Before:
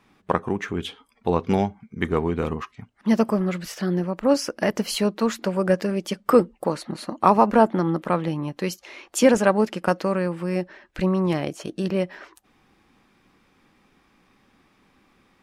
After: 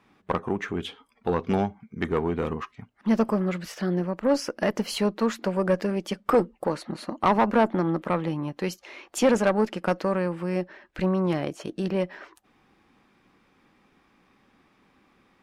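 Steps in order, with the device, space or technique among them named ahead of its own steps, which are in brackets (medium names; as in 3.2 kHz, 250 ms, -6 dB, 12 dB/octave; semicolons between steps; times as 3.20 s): tube preamp driven hard (valve stage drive 12 dB, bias 0.25; bass shelf 120 Hz -4.5 dB; treble shelf 4.3 kHz -6.5 dB)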